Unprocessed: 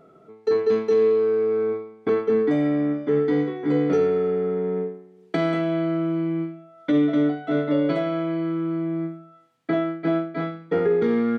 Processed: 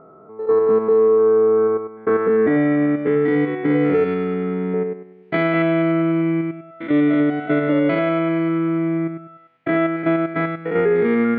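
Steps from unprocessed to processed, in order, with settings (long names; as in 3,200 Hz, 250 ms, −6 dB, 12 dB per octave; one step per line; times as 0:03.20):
spectrum averaged block by block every 100 ms
0:04.04–0:04.74: octave-band graphic EQ 125/250/500/2,000/4,000 Hz −3/+7/−11/−3/+6 dB
brickwall limiter −16 dBFS, peak gain reduction 4 dB
low-pass filter sweep 1,100 Hz → 2,300 Hz, 0:01.50–0:02.94
level +5.5 dB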